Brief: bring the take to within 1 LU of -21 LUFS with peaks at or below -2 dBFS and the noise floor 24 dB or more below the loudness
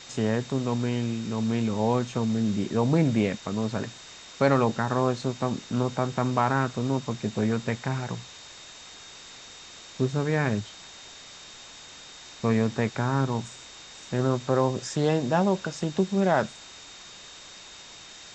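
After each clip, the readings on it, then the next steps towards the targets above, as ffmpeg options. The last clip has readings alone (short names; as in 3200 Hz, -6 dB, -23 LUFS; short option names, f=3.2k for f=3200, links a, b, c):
steady tone 3700 Hz; tone level -49 dBFS; noise floor -46 dBFS; noise floor target -51 dBFS; loudness -26.5 LUFS; peak -7.5 dBFS; loudness target -21.0 LUFS
-> -af "bandreject=f=3.7k:w=30"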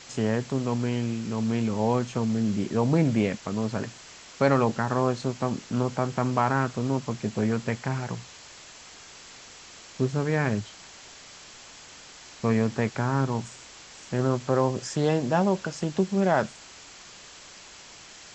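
steady tone none; noise floor -47 dBFS; noise floor target -51 dBFS
-> -af "afftdn=nr=6:nf=-47"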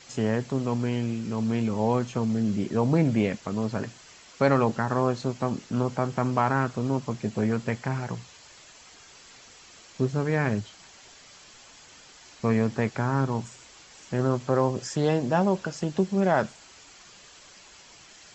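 noise floor -51 dBFS; loudness -26.5 LUFS; peak -8.0 dBFS; loudness target -21.0 LUFS
-> -af "volume=5.5dB"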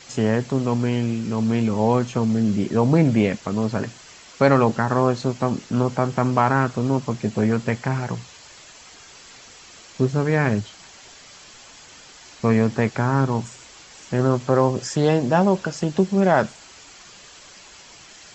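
loudness -21.0 LUFS; peak -2.5 dBFS; noise floor -46 dBFS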